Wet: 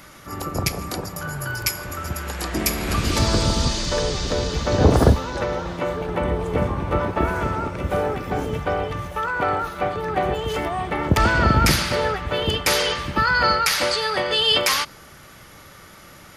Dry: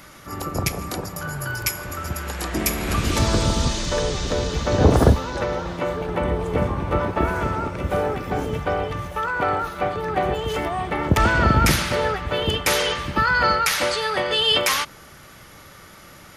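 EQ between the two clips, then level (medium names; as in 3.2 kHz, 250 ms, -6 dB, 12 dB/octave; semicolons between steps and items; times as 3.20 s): dynamic bell 4.7 kHz, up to +6 dB, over -43 dBFS, Q 4.7; 0.0 dB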